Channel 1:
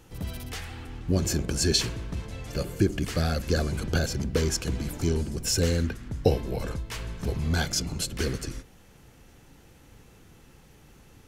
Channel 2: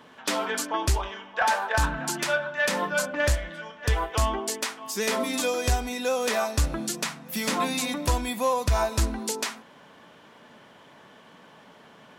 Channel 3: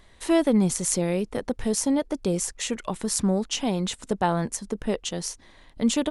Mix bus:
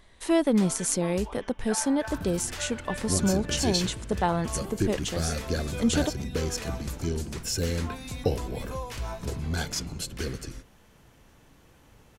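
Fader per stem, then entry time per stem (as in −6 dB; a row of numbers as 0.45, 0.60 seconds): −4.0, −13.5, −2.0 decibels; 2.00, 0.30, 0.00 seconds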